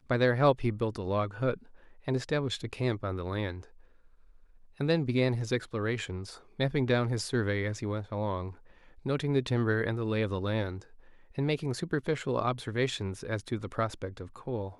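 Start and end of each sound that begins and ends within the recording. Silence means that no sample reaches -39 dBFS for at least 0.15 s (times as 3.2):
2.08–3.63
4.8–6.35
6.59–8.51
9.06–10.82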